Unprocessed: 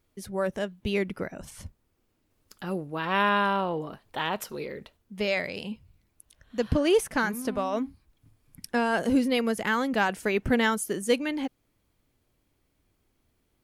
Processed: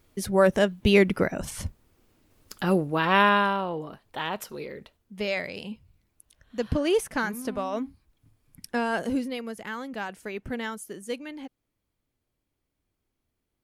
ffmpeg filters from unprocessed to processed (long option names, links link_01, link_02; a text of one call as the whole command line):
ffmpeg -i in.wav -af "volume=9dB,afade=type=out:start_time=2.71:duration=0.87:silence=0.298538,afade=type=out:start_time=8.94:duration=0.44:silence=0.421697" out.wav